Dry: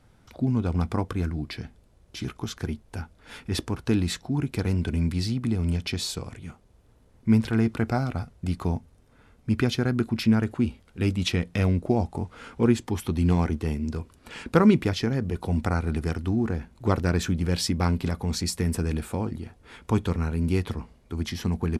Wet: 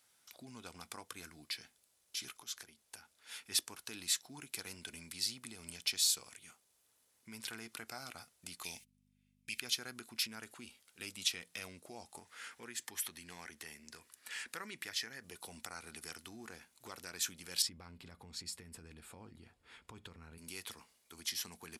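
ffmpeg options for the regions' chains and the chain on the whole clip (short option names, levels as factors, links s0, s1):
-filter_complex "[0:a]asettb=1/sr,asplit=3[s0][s1][s2];[s0]atrim=end=2.414[s3];[s1]atrim=start=2.41:end=3.46,asetpts=PTS-STARTPTS,afade=t=in:d=0.004:c=qsin,afade=t=out:st=1.046:d=0.004:c=qsin,highshelf=f=9600:g=-4,acompressor=threshold=0.02:ratio=10:attack=3.2:release=140:knee=1:detection=peak[s4];[s2]atrim=start=3.456[s5];[s3][s4]acrossfade=d=0.004:c1=hsin:c2=qsin[s6];[s6][s5]acrossfade=d=0.004:c1=qsin:c2=hsin,asettb=1/sr,asplit=3[s7][s8][s9];[s7]atrim=end=8.634[s10];[s8]atrim=start=8.63:end=9.6,asetpts=PTS-STARTPTS,afade=t=in:d=0.004:c=qsin,afade=t=out:st=0.966:d=0.004:c=qsin,agate=range=0.0251:threshold=0.00501:ratio=16:release=100:detection=peak,highshelf=f=1700:t=q:w=3:g=12,aeval=exprs='val(0)+0.01*(sin(2*PI*50*n/s)+sin(2*PI*2*50*n/s)/2+sin(2*PI*3*50*n/s)/3+sin(2*PI*4*50*n/s)/4+sin(2*PI*5*50*n/s)/5)':c=same[s11];[s9]atrim=start=9.596[s12];[s10][s11]acrossfade=d=0.004:c1=hsin:c2=qsin[s13];[s13][s12]acrossfade=d=0.004:c1=qsin:c2=hsin,asettb=1/sr,asplit=3[s14][s15][s16];[s14]atrim=end=12.194[s17];[s15]atrim=start=12.19:end=15.24,asetpts=PTS-STARTPTS,afade=t=in:d=0.004:c=qsin,afade=t=out:st=3.046:d=0.004:c=qsin,equalizer=f=1800:t=o:w=0.44:g=10,acompressor=threshold=0.0251:ratio=2:attack=3.2:release=140:knee=1:detection=peak[s18];[s16]atrim=start=15.236[s19];[s17][s18]acrossfade=d=0.004:c1=hsin:c2=qsin[s20];[s20][s19]acrossfade=d=0.004:c1=qsin:c2=hsin,asettb=1/sr,asplit=3[s21][s22][s23];[s21]atrim=end=17.624[s24];[s22]atrim=start=17.62:end=20.38,asetpts=PTS-STARTPTS,afade=t=in:d=0.004:c=qsin,afade=t=out:st=2.756:d=0.004:c=qsin,aemphasis=mode=reproduction:type=riaa,bandreject=f=6000:w=9.1[s25];[s23]atrim=start=20.376[s26];[s24][s25]acrossfade=d=0.004:c1=hsin:c2=qsin[s27];[s27][s26]acrossfade=d=0.004:c1=qsin:c2=hsin,alimiter=limit=0.119:level=0:latency=1:release=110,aderivative,volume=1.5"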